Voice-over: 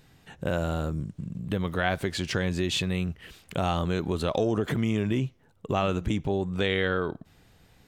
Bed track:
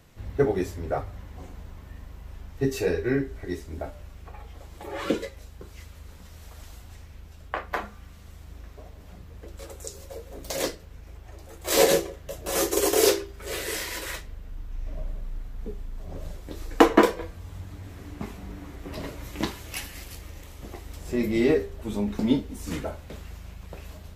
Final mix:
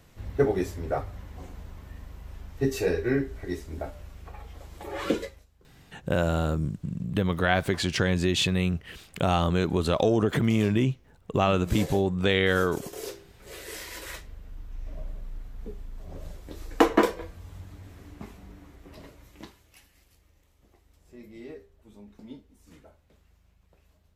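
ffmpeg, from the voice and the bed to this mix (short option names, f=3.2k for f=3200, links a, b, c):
-filter_complex "[0:a]adelay=5650,volume=3dB[a];[1:a]volume=14dB,afade=t=out:st=5.21:d=0.25:silence=0.133352,afade=t=in:st=13.21:d=1.11:silence=0.188365,afade=t=out:st=17.42:d=2.28:silence=0.125893[b];[a][b]amix=inputs=2:normalize=0"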